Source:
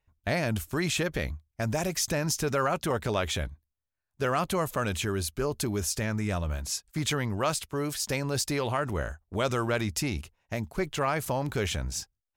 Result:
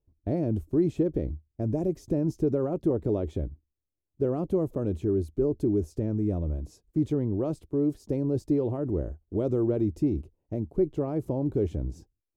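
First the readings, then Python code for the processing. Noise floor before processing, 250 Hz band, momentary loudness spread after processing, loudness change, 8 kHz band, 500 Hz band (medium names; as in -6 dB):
under -85 dBFS, +6.0 dB, 7 LU, +1.0 dB, under -25 dB, +2.5 dB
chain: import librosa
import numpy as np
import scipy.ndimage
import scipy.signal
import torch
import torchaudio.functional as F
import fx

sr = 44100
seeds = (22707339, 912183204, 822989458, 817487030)

y = fx.curve_eq(x, sr, hz=(220.0, 320.0, 1600.0), db=(0, 9, -27))
y = F.gain(torch.from_numpy(y), 1.5).numpy()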